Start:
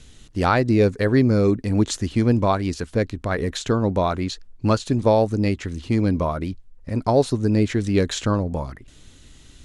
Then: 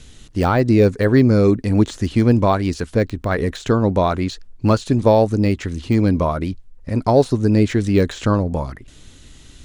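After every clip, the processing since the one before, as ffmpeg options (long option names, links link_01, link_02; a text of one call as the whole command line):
ffmpeg -i in.wav -af "deesser=0.8,volume=4dB" out.wav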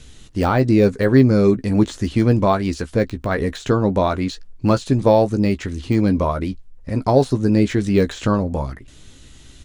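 ffmpeg -i in.wav -filter_complex "[0:a]asplit=2[link_01][link_02];[link_02]adelay=15,volume=-9.5dB[link_03];[link_01][link_03]amix=inputs=2:normalize=0,volume=-1dB" out.wav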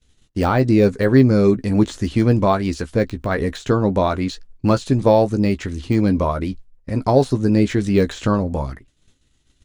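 ffmpeg -i in.wav -af "agate=range=-33dB:threshold=-30dB:ratio=3:detection=peak" out.wav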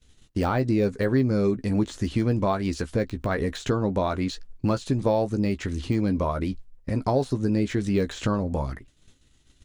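ffmpeg -i in.wav -af "acompressor=threshold=-29dB:ratio=2,volume=1.5dB" out.wav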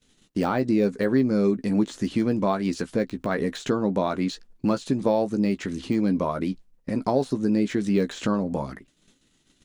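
ffmpeg -i in.wav -af "lowshelf=frequency=130:width_type=q:width=1.5:gain=-11" out.wav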